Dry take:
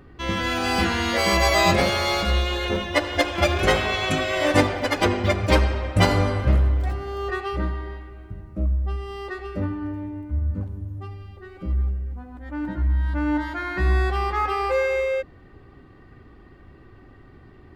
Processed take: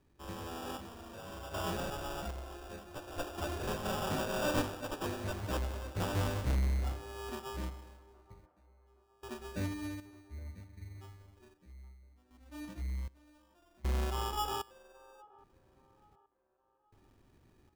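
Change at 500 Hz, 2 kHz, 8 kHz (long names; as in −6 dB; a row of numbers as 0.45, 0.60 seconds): −17.0, −20.0, −12.0 decibels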